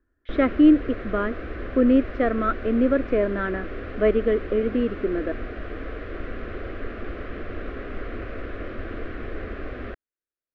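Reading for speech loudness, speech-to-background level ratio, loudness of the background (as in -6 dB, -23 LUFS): -22.5 LUFS, 13.0 dB, -35.5 LUFS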